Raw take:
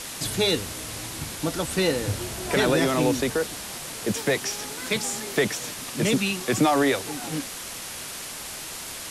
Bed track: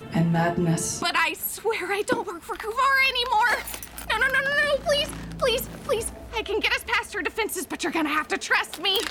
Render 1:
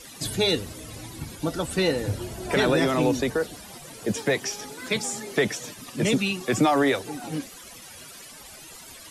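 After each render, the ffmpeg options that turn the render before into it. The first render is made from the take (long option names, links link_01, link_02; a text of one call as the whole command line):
ffmpeg -i in.wav -af "afftdn=noise_reduction=14:noise_floor=-36" out.wav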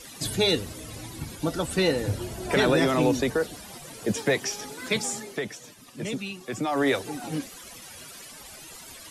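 ffmpeg -i in.wav -filter_complex "[0:a]asplit=3[link_01][link_02][link_03];[link_01]atrim=end=5.41,asetpts=PTS-STARTPTS,afade=type=out:start_time=5.12:duration=0.29:silence=0.354813[link_04];[link_02]atrim=start=5.41:end=6.65,asetpts=PTS-STARTPTS,volume=-9dB[link_05];[link_03]atrim=start=6.65,asetpts=PTS-STARTPTS,afade=type=in:duration=0.29:silence=0.354813[link_06];[link_04][link_05][link_06]concat=n=3:v=0:a=1" out.wav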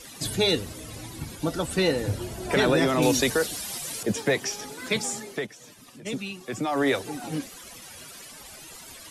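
ffmpeg -i in.wav -filter_complex "[0:a]asettb=1/sr,asplit=3[link_01][link_02][link_03];[link_01]atrim=end=3.024[link_04];[link_02]atrim=start=3.02:end=4.03,asetpts=PTS-STARTPTS,afade=type=in:duration=0.004:curve=qsin,afade=type=out:start_time=1.006:duration=0.004:curve=qsin,highshelf=frequency=2200:gain=12[link_05];[link_03]atrim=start=4.026[link_06];[link_04][link_05]acrossfade=duration=0.004:curve1=hsin:curve2=qsin[link_07];[link_07][link_06]acrossfade=duration=0.004:curve1=qsin:curve2=hsin,asplit=3[link_08][link_09][link_10];[link_08]afade=type=out:start_time=5.45:duration=0.02[link_11];[link_09]acompressor=threshold=-43dB:ratio=6:attack=3.2:release=140:knee=1:detection=peak,afade=type=in:start_time=5.45:duration=0.02,afade=type=out:start_time=6.05:duration=0.02[link_12];[link_10]afade=type=in:start_time=6.05:duration=0.02[link_13];[link_11][link_12][link_13]amix=inputs=3:normalize=0" out.wav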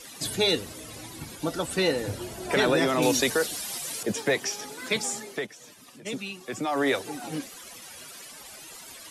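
ffmpeg -i in.wav -af "lowshelf=frequency=160:gain=-9.5" out.wav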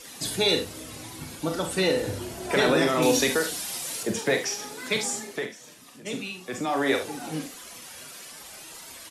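ffmpeg -i in.wav -filter_complex "[0:a]asplit=2[link_01][link_02];[link_02]adelay=32,volume=-12.5dB[link_03];[link_01][link_03]amix=inputs=2:normalize=0,aecho=1:1:44|72:0.398|0.251" out.wav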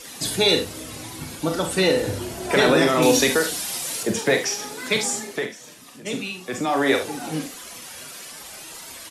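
ffmpeg -i in.wav -af "volume=4.5dB" out.wav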